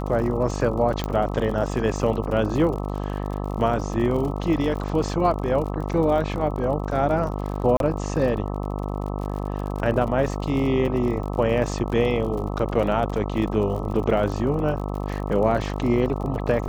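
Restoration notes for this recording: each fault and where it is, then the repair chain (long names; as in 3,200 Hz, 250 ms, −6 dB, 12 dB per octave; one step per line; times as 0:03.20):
mains buzz 50 Hz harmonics 26 −28 dBFS
surface crackle 54 per second −31 dBFS
0:01.04: click −12 dBFS
0:07.77–0:07.80: drop-out 32 ms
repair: click removal
hum removal 50 Hz, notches 26
repair the gap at 0:07.77, 32 ms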